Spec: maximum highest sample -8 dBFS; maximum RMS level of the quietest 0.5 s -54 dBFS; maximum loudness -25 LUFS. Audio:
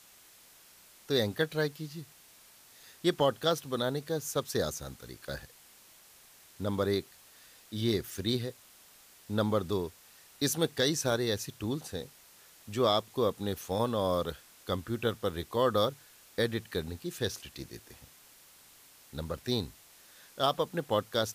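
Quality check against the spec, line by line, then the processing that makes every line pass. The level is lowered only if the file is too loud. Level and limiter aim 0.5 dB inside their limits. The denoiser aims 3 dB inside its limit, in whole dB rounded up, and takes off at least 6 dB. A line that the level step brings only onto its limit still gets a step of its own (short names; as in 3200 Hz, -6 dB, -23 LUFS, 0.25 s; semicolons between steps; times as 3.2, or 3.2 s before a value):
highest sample -14.5 dBFS: OK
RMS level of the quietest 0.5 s -58 dBFS: OK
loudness -32.5 LUFS: OK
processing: none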